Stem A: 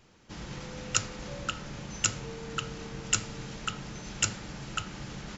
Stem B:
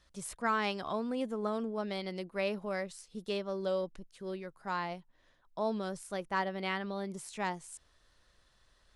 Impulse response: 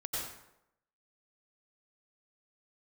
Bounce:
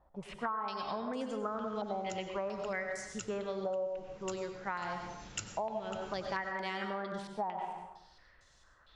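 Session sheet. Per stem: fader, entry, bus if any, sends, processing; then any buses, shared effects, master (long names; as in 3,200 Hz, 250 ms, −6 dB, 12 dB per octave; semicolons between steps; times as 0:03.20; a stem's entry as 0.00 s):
0:04.66 −19 dB → 0:05.10 −11.5 dB, 1.15 s, send −13.5 dB, no processing
−3.0 dB, 0.00 s, send −4.5 dB, parametric band 810 Hz +3 dB 0.77 octaves; low-pass on a step sequencer 4.4 Hz 810–6,800 Hz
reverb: on, RT60 0.85 s, pre-delay 83 ms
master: downward compressor 12 to 1, threshold −33 dBFS, peak gain reduction 16.5 dB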